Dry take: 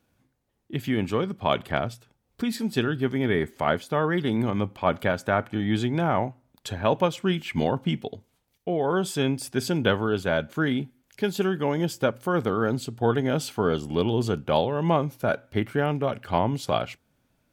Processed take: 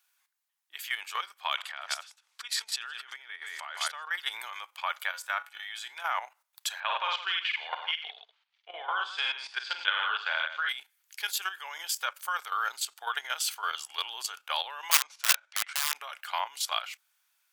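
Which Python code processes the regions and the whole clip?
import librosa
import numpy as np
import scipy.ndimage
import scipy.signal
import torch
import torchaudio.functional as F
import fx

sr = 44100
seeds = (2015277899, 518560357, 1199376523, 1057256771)

y = fx.chain(x, sr, fx.lowpass(hz=7700.0, slope=12),
    fx.echo_single(ms=160, db=-15.0),
    fx.over_compress(threshold_db=-32.0, ratio=-1.0), at=(1.58, 4.11))
y = fx.chain(y, sr, fx.high_shelf(hz=2900.0, db=2.5),
    fx.comb_fb(f0_hz=76.0, decay_s=0.23, harmonics='odd', damping=0.0, mix_pct=60), at=(5.09, 6.02))
y = fx.chain(y, sr, fx.lowpass(hz=3800.0, slope=24),
    fx.echo_multitap(ms=(49, 99, 161), db=(-3.5, -8.5, -9.0)), at=(6.8, 10.69))
y = fx.chain(y, sr, fx.lowpass(hz=7000.0, slope=24),
    fx.overflow_wrap(gain_db=19.0), at=(14.91, 15.95))
y = scipy.signal.sosfilt(scipy.signal.butter(4, 1000.0, 'highpass', fs=sr, output='sos'), y)
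y = fx.tilt_eq(y, sr, slope=2.5)
y = fx.level_steps(y, sr, step_db=11)
y = y * 10.0 ** (3.5 / 20.0)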